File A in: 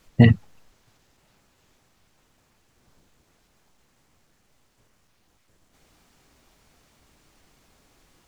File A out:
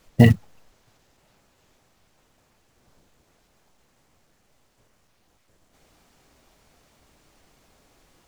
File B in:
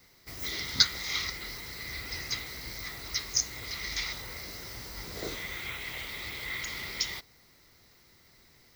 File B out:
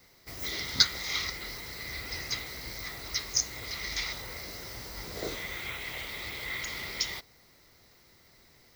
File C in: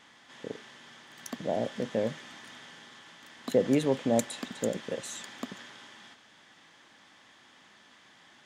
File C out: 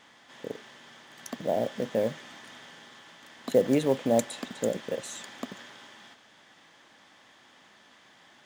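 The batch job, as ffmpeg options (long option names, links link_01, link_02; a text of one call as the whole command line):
ffmpeg -i in.wav -af "equalizer=frequency=600:width_type=o:width=1.1:gain=3.5,acrusher=bits=7:mode=log:mix=0:aa=0.000001" out.wav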